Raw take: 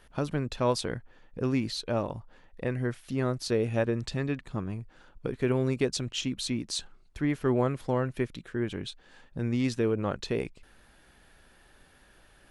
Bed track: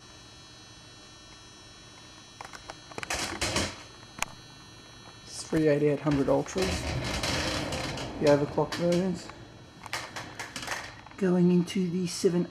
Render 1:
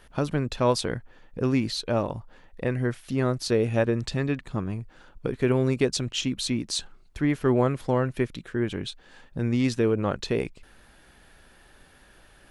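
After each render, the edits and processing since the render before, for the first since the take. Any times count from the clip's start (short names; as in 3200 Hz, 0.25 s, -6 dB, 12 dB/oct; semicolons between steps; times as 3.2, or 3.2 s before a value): gain +4 dB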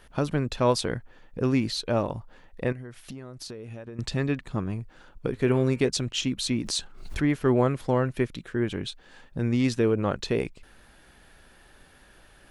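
2.72–3.99 compressor 20:1, threshold -35 dBFS; 5.32–5.89 de-hum 103.2 Hz, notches 32; 6.5–7.23 backwards sustainer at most 68 dB/s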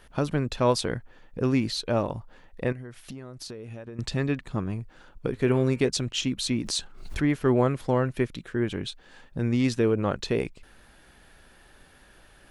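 nothing audible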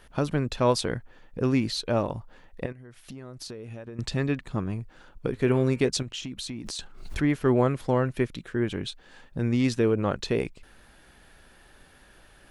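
2.66–3.29 fade in, from -12 dB; 6.02–6.79 compressor, threshold -32 dBFS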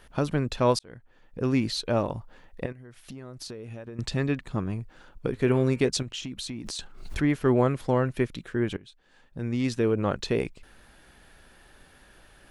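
0.79–1.6 fade in; 8.77–10.06 fade in, from -21 dB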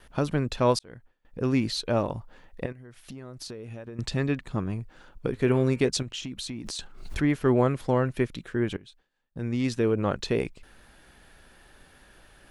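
gate with hold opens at -48 dBFS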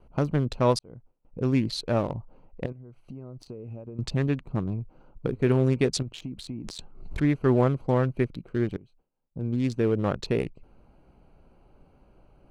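Wiener smoothing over 25 samples; bell 140 Hz +3 dB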